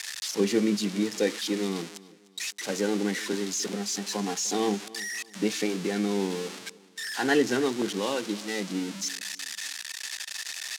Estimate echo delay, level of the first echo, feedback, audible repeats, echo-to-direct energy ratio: 301 ms, -20.0 dB, 32%, 2, -19.5 dB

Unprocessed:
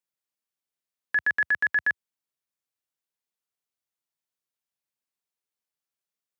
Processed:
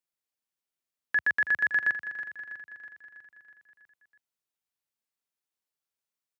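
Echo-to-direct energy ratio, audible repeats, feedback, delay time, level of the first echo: -9.5 dB, 5, 58%, 324 ms, -11.5 dB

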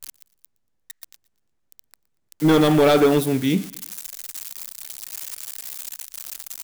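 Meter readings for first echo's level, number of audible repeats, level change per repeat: -22.0 dB, 2, -7.5 dB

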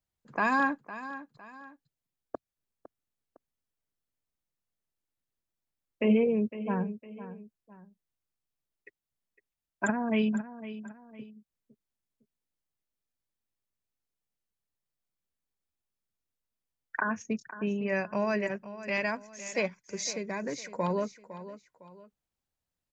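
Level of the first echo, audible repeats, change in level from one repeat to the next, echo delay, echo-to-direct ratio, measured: -14.0 dB, 2, -8.5 dB, 507 ms, -13.5 dB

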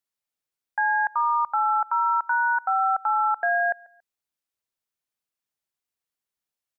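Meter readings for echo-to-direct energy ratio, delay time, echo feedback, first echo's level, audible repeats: -23.5 dB, 140 ms, 29%, -24.0 dB, 2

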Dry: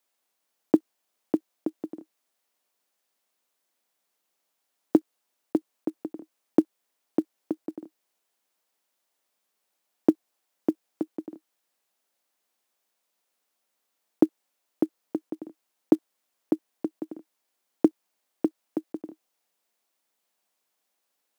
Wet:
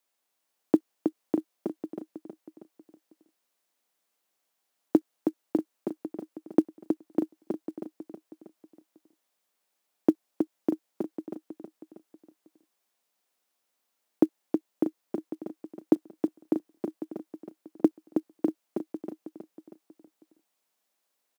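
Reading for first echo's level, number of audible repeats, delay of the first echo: -6.0 dB, 4, 319 ms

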